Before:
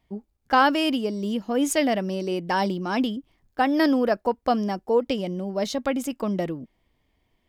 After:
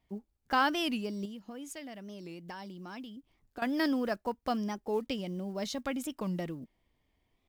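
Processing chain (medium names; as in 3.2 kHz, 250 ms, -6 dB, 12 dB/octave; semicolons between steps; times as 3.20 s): block-companded coder 7-bit; dynamic bell 530 Hz, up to -6 dB, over -34 dBFS, Q 0.74; 1.25–3.63 s: compression 6:1, threshold -36 dBFS, peak gain reduction 14.5 dB; warped record 45 rpm, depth 160 cents; trim -6 dB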